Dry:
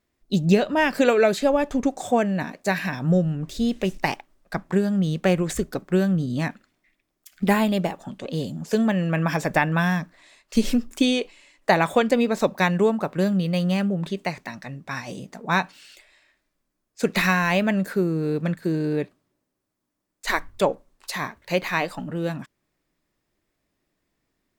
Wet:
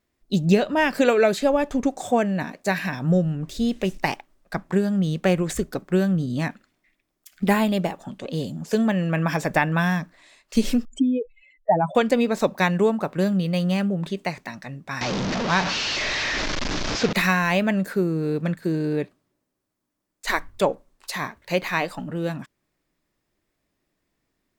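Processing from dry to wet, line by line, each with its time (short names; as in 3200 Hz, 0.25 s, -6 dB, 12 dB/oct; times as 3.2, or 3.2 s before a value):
10.85–11.95 spectral contrast raised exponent 3.4
15.01–17.13 delta modulation 32 kbps, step -19 dBFS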